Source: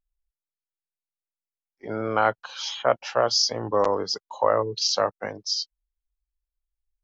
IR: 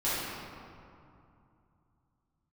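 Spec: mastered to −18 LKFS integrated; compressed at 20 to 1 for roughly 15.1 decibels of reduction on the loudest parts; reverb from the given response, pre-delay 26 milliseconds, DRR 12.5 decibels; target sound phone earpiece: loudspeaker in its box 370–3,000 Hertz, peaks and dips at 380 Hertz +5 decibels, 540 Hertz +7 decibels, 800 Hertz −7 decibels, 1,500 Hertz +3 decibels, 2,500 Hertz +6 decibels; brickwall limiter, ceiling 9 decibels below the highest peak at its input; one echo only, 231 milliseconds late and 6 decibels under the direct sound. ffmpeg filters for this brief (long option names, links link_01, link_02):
-filter_complex "[0:a]acompressor=threshold=-30dB:ratio=20,alimiter=level_in=1dB:limit=-24dB:level=0:latency=1,volume=-1dB,aecho=1:1:231:0.501,asplit=2[link_01][link_02];[1:a]atrim=start_sample=2205,adelay=26[link_03];[link_02][link_03]afir=irnorm=-1:irlink=0,volume=-23dB[link_04];[link_01][link_04]amix=inputs=2:normalize=0,highpass=370,equalizer=frequency=380:width_type=q:width=4:gain=5,equalizer=frequency=540:width_type=q:width=4:gain=7,equalizer=frequency=800:width_type=q:width=4:gain=-7,equalizer=frequency=1500:width_type=q:width=4:gain=3,equalizer=frequency=2500:width_type=q:width=4:gain=6,lowpass=frequency=3000:width=0.5412,lowpass=frequency=3000:width=1.3066,volume=18.5dB"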